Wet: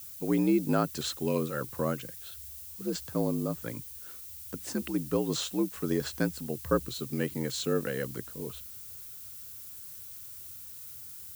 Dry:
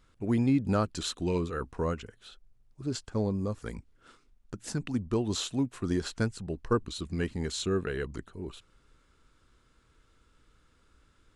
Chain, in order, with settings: added noise violet -45 dBFS; frequency shift +60 Hz

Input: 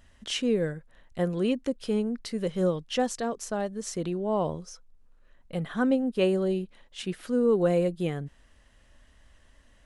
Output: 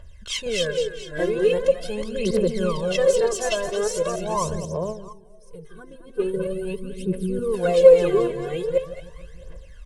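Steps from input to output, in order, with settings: chunks repeated in reverse 462 ms, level -1 dB; comb 1.9 ms, depth 87%; on a send: two-band feedback delay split 580 Hz, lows 158 ms, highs 219 ms, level -8.5 dB; 5.13–7.54 s: on the sum: time-frequency box 480–8000 Hz -12 dB; 4.65–6.34 s: gate -22 dBFS, range -8 dB; phaser 0.42 Hz, delay 3.1 ms, feedback 73%; trim -1 dB

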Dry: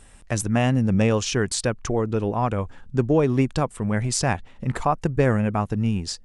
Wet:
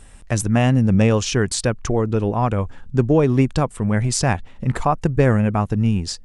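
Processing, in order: bass shelf 170 Hz +4 dB; trim +2.5 dB

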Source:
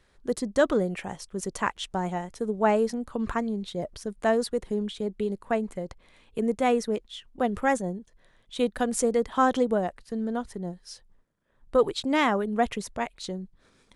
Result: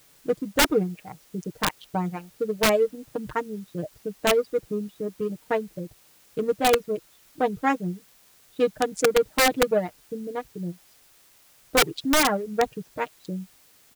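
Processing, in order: local Wiener filter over 41 samples; low-pass 6.5 kHz 12 dB/octave; reverb removal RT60 1.5 s; high-pass 90 Hz 12 dB/octave; comb 6.5 ms, depth 74%; in parallel at -9 dB: word length cut 8-bit, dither triangular; on the sum: integer overflow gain 12 dB

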